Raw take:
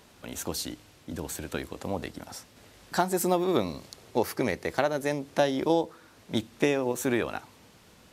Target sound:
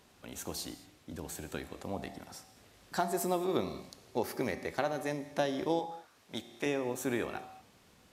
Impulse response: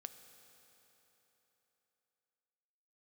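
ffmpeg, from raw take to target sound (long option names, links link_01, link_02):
-filter_complex "[0:a]asettb=1/sr,asplit=3[link_01][link_02][link_03];[link_01]atrim=end=5.794[link_04];[link_02]atrim=start=5.79:end=6.66,asetpts=PTS-STARTPTS,afade=type=in:duration=0.004:curve=qsin,afade=type=out:start_time=0.866:duration=0.004:curve=qsin,lowshelf=frequency=410:gain=-9.5[link_05];[link_03]atrim=start=6.656[link_06];[link_04][link_05]acrossfade=duration=0.004:curve1=hsin:curve2=qsin[link_07];[link_07][link_06]acrossfade=duration=0.004:curve1=qsin:curve2=hsin[link_08];[1:a]atrim=start_sample=2205,afade=type=out:start_time=0.4:duration=0.01,atrim=end_sample=18081,asetrate=66150,aresample=44100[link_09];[link_08][link_09]afir=irnorm=-1:irlink=0,volume=2.5dB"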